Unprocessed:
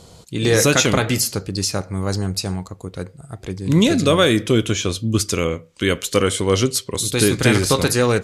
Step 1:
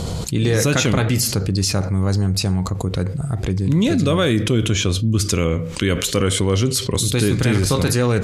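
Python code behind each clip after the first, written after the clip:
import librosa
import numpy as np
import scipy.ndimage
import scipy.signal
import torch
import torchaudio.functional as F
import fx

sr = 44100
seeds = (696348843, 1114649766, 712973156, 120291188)

y = fx.bass_treble(x, sr, bass_db=7, treble_db=-3)
y = fx.env_flatten(y, sr, amount_pct=70)
y = F.gain(torch.from_numpy(y), -8.0).numpy()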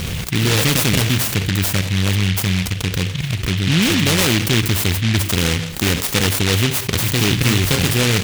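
y = fx.noise_mod_delay(x, sr, seeds[0], noise_hz=2600.0, depth_ms=0.38)
y = F.gain(torch.from_numpy(y), 1.0).numpy()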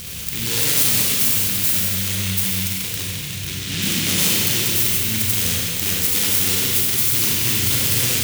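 y = scipy.signal.lfilter([1.0, -0.8], [1.0], x)
y = fx.rev_schroeder(y, sr, rt60_s=2.8, comb_ms=32, drr_db=-4.0)
y = F.gain(torch.from_numpy(y), -1.5).numpy()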